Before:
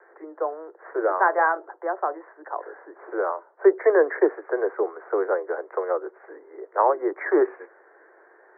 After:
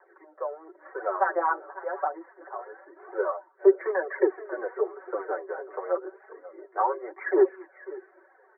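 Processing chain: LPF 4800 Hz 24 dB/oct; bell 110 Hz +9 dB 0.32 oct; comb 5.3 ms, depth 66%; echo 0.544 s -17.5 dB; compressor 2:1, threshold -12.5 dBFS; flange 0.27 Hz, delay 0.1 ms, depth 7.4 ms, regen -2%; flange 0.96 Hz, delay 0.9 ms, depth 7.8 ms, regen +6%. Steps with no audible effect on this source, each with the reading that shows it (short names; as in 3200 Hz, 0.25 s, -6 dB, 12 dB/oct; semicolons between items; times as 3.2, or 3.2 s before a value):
LPF 4800 Hz: input band ends at 1900 Hz; bell 110 Hz: input band starts at 290 Hz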